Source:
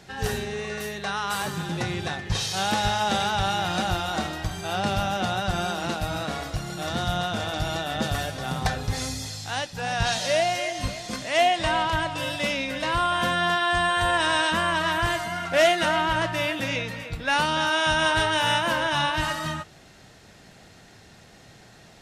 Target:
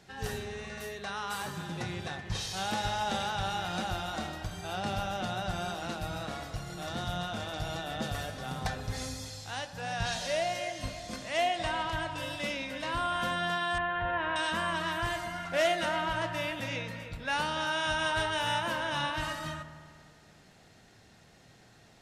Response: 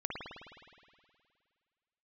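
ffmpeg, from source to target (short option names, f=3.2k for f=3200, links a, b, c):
-filter_complex "[0:a]asettb=1/sr,asplit=3[a][b][c];[a]atrim=end=13.784[d];[b]atrim=start=13.78:end=14.36,asetpts=PTS-STARTPTS,afade=t=in:d=0.004:c=qsin,afade=t=out:st=0.576:d=0.004:c=qsin,lowpass=f=2.5k:w=0.5412,lowpass=f=2.5k:w=1.3066[e];[c]atrim=start=14.356[f];[d][e]acrossfade=d=0.004:c1=hsin:c2=qsin[g];[g][f]acrossfade=d=0.004:c1=qsin:c2=hsin,asplit=2[h][i];[1:a]atrim=start_sample=2205,lowpass=2.2k,adelay=27[j];[i][j]afir=irnorm=-1:irlink=0,volume=-12dB[k];[h][k]amix=inputs=2:normalize=0,volume=-8.5dB"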